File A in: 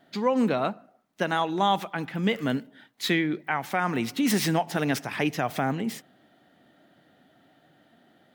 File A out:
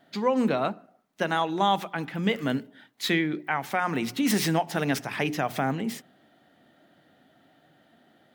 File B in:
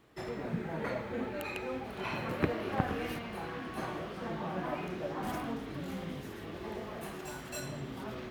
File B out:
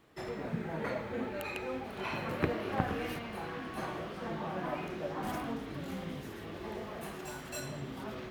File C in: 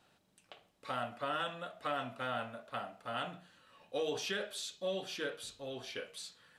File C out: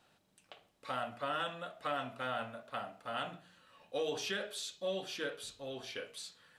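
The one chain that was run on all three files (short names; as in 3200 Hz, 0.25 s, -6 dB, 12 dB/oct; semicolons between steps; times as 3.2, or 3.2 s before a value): notches 60/120/180/240/300/360/420 Hz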